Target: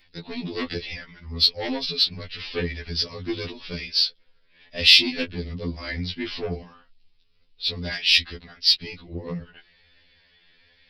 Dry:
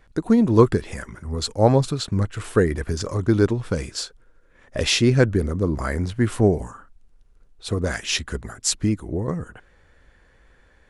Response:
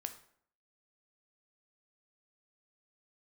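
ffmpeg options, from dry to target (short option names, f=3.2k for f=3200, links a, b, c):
-af "aresample=11025,asoftclip=type=tanh:threshold=-12dB,aresample=44100,flanger=delay=3.7:depth=1.3:regen=-34:speed=1.2:shape=triangular,aexciter=amount=7.2:drive=6.9:freq=2.1k,afftfilt=real='re*2*eq(mod(b,4),0)':imag='im*2*eq(mod(b,4),0)':win_size=2048:overlap=0.75,volume=-2.5dB"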